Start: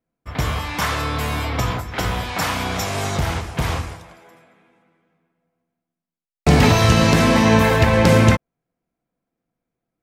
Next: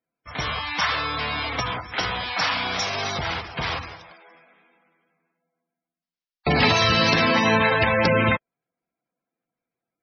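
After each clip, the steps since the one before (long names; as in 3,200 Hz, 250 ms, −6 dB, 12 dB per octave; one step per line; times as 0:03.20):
Butterworth low-pass 5,600 Hz 36 dB per octave
spectral tilt +3 dB per octave
gate on every frequency bin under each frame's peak −15 dB strong
level −1.5 dB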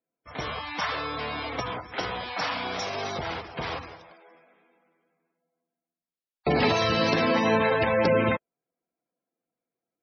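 parametric band 420 Hz +9 dB 2.2 octaves
level −8.5 dB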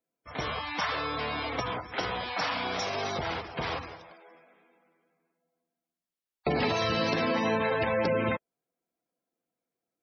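downward compressor 2.5 to 1, threshold −26 dBFS, peak gain reduction 6 dB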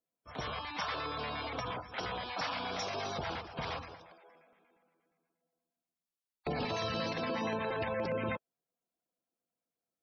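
brickwall limiter −20.5 dBFS, peak gain reduction 8 dB
auto-filter notch square 8.5 Hz 350–2,000 Hz
level −4.5 dB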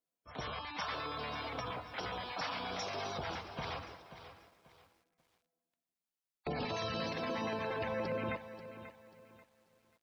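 feedback echo at a low word length 537 ms, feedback 35%, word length 10 bits, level −12.5 dB
level −2.5 dB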